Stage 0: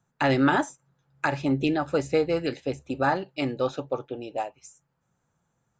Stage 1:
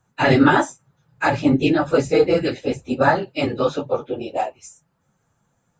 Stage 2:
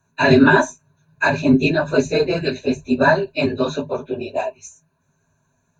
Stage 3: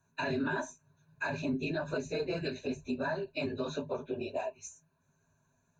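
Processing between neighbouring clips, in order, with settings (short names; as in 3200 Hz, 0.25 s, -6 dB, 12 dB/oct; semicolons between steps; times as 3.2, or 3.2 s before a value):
phase scrambler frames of 50 ms; gain +7 dB
ripple EQ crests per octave 1.5, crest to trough 15 dB; gain -1 dB
compressor 2.5:1, threshold -25 dBFS, peak gain reduction 12 dB; limiter -17 dBFS, peak gain reduction 5.5 dB; gain -7.5 dB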